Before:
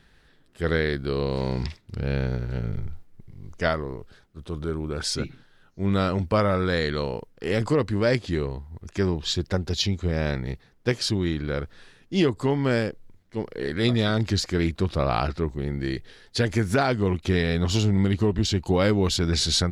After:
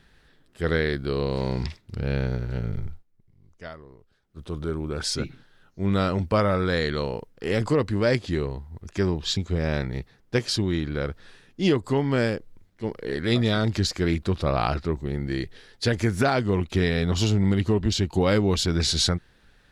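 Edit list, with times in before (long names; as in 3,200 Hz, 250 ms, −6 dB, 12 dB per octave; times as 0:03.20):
0:02.87–0:04.39: duck −15.5 dB, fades 0.16 s
0:09.37–0:09.90: remove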